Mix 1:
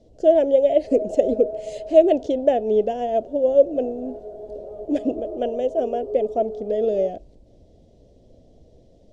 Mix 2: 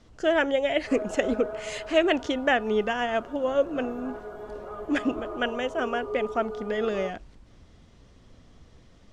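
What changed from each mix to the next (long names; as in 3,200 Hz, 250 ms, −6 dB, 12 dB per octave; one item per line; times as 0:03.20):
background +3.5 dB
master: remove drawn EQ curve 200 Hz 0 dB, 630 Hz +10 dB, 1,200 Hz −25 dB, 3,900 Hz −6 dB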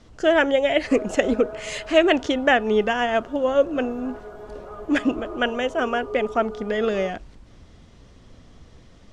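speech +5.0 dB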